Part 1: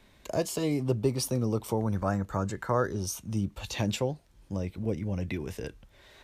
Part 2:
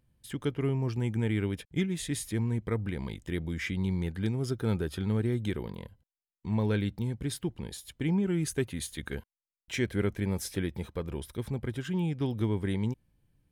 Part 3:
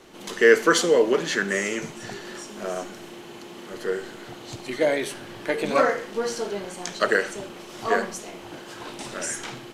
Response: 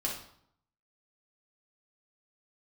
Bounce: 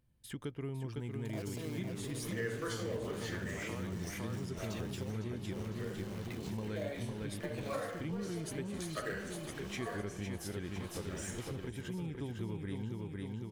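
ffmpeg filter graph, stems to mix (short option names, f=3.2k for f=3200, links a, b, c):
-filter_complex "[0:a]adelay=1000,volume=-5dB,asplit=2[a][b];[b]volume=-10dB[c];[1:a]volume=-4dB,asplit=3[d][e][f];[e]volume=-4dB[g];[2:a]adelay=1950,volume=-12.5dB,asplit=3[h][i][j];[i]volume=-4dB[k];[j]volume=-19dB[l];[f]apad=whole_len=515250[m];[h][m]sidechaincompress=threshold=-37dB:ratio=8:attack=6.7:release=556[n];[a][n]amix=inputs=2:normalize=0,acrusher=bits=2:mode=log:mix=0:aa=0.000001,alimiter=level_in=5.5dB:limit=-24dB:level=0:latency=1:release=68,volume=-5.5dB,volume=0dB[o];[3:a]atrim=start_sample=2205[p];[k][p]afir=irnorm=-1:irlink=0[q];[c][g][l]amix=inputs=3:normalize=0,aecho=0:1:505|1010|1515|2020|2525|3030|3535|4040|4545:1|0.57|0.325|0.185|0.106|0.0602|0.0343|0.0195|0.0111[r];[d][o][q][r]amix=inputs=4:normalize=0,acompressor=threshold=-40dB:ratio=2.5"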